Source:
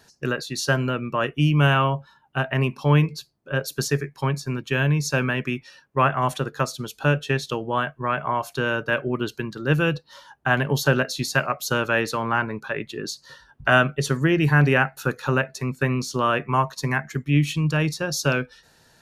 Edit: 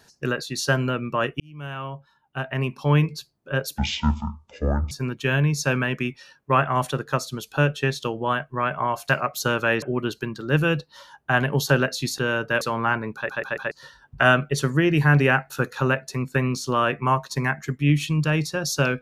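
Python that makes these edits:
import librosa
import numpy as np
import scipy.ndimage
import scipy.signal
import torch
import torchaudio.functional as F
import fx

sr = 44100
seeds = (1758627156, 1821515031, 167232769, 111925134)

y = fx.edit(x, sr, fx.fade_in_span(start_s=1.4, length_s=1.77),
    fx.speed_span(start_s=3.78, length_s=0.6, speed=0.53),
    fx.swap(start_s=8.56, length_s=0.43, other_s=11.35, other_length_s=0.73),
    fx.stutter_over(start_s=12.62, slice_s=0.14, count=4), tone=tone)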